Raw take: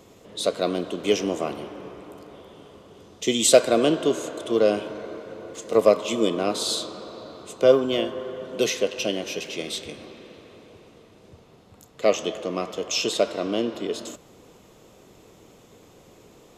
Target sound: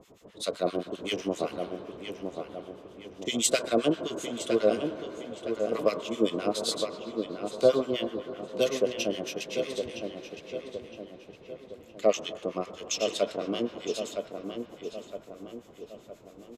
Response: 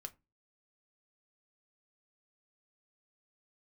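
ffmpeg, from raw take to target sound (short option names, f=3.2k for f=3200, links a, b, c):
-filter_complex "[0:a]asettb=1/sr,asplit=3[a][b][c];[a]atrim=end=0.614[d];[b]atrim=start=0.61:end=1.14,asetpts=PTS-STARTPTS,afade=t=in:d=0.004:c=qsin,afade=t=out:st=0.526:d=0.004:c=qsin,asplit=2[e][f];[f]adelay=45,volume=-7dB[g];[e][g]amix=inputs=2:normalize=0,atrim=end_sample=23373[h];[c]atrim=start=1.136[i];[d][h]acrossfade=d=0.004:c1=hsin:c2=qsin[j];[j][i]acrossfade=d=0.004:c1=qsin:c2=hsin,acrossover=split=1200[k][l];[k]aeval=exprs='val(0)*(1-1/2+1/2*cos(2*PI*7.7*n/s))':c=same[m];[l]aeval=exprs='val(0)*(1-1/2-1/2*cos(2*PI*7.7*n/s))':c=same[n];[m][n]amix=inputs=2:normalize=0,asplit=2[o][p];[p]adelay=963,lowpass=f=2.6k:p=1,volume=-6dB,asplit=2[q][r];[r]adelay=963,lowpass=f=2.6k:p=1,volume=0.49,asplit=2[s][t];[t]adelay=963,lowpass=f=2.6k:p=1,volume=0.49,asplit=2[u][v];[v]adelay=963,lowpass=f=2.6k:p=1,volume=0.49,asplit=2[w][x];[x]adelay=963,lowpass=f=2.6k:p=1,volume=0.49,asplit=2[y][z];[z]adelay=963,lowpass=f=2.6k:p=1,volume=0.49[aa];[o][q][s][u][w][y][aa]amix=inputs=7:normalize=0,volume=-1.5dB"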